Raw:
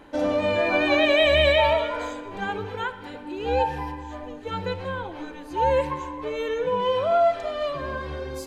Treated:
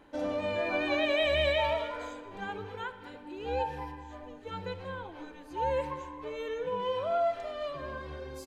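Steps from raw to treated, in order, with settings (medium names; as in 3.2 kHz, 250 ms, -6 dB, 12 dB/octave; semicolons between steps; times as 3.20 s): speakerphone echo 210 ms, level -16 dB; trim -9 dB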